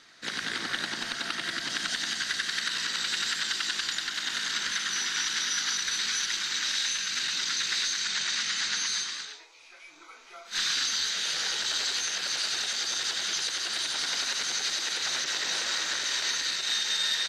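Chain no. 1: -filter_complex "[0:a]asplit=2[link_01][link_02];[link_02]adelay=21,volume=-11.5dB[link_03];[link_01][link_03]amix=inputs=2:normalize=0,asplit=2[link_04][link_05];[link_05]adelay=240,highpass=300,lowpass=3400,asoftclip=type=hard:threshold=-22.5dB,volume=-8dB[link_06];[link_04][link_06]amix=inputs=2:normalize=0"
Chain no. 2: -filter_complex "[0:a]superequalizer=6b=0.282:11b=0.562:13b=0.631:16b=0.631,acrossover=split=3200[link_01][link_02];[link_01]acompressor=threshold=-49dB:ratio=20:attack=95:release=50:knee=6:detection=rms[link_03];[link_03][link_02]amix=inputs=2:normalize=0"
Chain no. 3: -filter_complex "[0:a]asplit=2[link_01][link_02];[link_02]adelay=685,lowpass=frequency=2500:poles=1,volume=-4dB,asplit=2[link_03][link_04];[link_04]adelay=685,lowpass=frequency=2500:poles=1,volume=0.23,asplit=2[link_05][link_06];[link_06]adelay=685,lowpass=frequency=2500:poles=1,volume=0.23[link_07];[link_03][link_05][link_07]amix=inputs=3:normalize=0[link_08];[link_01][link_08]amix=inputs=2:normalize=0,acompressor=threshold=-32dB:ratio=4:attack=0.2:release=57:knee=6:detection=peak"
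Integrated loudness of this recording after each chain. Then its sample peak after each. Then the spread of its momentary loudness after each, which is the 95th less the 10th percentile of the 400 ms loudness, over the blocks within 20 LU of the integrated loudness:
−27.0, −31.0, −34.5 LKFS; −14.0, −17.5, −26.0 dBFS; 4, 7, 2 LU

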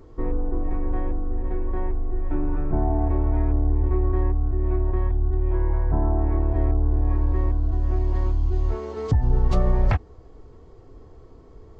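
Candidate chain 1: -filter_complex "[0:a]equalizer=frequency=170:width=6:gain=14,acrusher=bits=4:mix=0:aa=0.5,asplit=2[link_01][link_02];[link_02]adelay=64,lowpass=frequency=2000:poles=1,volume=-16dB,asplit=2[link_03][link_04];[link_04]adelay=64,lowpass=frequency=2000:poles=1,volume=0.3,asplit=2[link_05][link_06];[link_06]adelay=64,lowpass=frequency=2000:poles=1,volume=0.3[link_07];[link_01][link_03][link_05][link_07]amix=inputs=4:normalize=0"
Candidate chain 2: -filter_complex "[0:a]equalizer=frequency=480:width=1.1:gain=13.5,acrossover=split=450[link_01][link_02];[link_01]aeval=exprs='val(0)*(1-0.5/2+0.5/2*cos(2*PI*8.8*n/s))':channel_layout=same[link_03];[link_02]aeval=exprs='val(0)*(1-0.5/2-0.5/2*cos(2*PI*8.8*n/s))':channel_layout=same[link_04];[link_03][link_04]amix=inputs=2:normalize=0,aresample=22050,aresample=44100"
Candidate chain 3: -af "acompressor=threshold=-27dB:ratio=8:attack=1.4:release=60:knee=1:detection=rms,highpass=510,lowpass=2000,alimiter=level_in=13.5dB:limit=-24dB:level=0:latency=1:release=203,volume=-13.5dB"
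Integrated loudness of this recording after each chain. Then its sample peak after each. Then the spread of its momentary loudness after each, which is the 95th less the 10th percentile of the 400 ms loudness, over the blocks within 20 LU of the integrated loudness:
−24.5, −24.0, −49.5 LKFS; −6.0, −7.5, −37.5 dBFS; 8, 6, 11 LU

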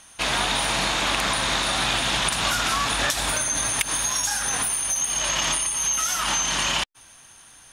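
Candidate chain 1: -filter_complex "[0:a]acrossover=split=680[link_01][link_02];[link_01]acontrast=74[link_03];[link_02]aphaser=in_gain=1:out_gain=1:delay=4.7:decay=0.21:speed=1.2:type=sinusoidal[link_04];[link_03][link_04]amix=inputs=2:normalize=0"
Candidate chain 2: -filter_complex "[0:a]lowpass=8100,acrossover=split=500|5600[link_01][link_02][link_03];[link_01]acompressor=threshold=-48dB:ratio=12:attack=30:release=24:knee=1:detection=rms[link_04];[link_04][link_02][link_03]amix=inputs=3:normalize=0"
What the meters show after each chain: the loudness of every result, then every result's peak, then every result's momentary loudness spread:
−21.0, −23.0 LKFS; −6.5, −8.0 dBFS; 2, 2 LU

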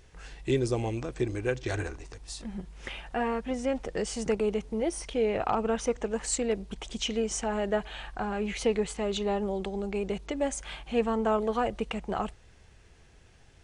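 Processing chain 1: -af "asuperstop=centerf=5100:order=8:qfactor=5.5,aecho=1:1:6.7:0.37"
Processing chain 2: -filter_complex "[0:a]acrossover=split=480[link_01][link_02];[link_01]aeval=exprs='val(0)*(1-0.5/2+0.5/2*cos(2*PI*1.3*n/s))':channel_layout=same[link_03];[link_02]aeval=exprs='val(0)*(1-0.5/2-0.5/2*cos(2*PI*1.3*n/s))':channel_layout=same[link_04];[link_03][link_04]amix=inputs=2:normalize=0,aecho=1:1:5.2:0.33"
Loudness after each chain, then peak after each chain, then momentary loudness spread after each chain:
−30.5, −33.0 LKFS; −14.0, −17.0 dBFS; 13, 11 LU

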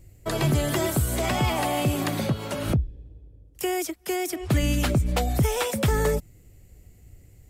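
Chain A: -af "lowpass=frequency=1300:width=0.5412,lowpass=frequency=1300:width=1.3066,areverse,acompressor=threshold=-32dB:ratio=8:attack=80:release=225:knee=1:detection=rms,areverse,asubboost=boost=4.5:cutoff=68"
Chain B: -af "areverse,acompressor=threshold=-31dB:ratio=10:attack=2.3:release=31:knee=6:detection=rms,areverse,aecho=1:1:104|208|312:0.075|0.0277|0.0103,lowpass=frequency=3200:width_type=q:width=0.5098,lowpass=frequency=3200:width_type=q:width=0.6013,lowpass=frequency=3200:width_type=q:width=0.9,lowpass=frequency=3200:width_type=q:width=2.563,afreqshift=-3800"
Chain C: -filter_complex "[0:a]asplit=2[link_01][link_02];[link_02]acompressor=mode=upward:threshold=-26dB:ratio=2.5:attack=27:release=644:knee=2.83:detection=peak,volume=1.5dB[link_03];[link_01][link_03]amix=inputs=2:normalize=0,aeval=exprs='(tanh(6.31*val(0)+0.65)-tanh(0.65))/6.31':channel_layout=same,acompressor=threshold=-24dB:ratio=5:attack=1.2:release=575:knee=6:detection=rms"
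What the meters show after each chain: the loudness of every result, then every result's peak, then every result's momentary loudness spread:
−33.5, −32.0, −32.0 LKFS; −16.5, −23.0, −14.0 dBFS; 16, 15, 13 LU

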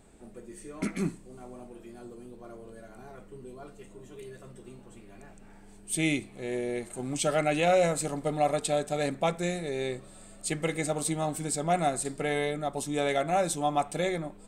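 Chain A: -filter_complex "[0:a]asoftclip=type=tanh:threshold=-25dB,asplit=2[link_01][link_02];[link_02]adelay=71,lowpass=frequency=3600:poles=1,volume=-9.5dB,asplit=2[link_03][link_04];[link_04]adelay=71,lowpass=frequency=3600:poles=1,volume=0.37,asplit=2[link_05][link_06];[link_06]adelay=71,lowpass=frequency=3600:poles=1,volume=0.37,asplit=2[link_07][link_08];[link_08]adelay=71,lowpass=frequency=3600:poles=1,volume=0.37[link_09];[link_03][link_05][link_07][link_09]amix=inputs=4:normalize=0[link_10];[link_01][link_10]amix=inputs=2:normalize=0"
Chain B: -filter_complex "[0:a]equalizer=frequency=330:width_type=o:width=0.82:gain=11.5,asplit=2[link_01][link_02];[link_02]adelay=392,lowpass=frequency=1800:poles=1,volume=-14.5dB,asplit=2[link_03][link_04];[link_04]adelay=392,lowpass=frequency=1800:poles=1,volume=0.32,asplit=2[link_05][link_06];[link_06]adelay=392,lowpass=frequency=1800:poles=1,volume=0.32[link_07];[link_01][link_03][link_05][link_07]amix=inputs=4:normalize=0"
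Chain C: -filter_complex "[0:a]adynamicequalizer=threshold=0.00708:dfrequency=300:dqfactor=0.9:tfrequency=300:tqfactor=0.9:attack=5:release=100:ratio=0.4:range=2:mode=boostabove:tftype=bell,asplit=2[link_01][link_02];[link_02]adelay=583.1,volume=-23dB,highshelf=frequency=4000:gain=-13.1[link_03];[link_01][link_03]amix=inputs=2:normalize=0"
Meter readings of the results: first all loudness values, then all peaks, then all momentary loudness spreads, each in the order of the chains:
−32.0, −25.0, −28.0 LKFS; −21.5, −9.0, −12.5 dBFS; 18, 20, 21 LU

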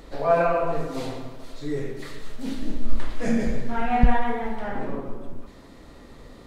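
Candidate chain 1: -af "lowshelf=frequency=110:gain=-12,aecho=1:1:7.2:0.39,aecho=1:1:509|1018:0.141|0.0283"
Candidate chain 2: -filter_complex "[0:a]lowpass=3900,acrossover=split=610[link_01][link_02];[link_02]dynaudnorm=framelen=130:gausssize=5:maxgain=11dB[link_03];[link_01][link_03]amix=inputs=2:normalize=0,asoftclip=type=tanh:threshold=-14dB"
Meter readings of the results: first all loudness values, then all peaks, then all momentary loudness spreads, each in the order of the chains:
−27.5, −24.5 LKFS; −8.0, −14.0 dBFS; 18, 23 LU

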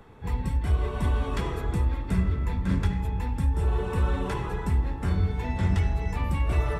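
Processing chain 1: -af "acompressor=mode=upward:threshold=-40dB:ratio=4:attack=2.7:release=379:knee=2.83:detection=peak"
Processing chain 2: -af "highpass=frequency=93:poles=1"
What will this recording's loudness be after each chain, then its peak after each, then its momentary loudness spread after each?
−27.5, −31.0 LKFS; −12.5, −14.5 dBFS; 4, 3 LU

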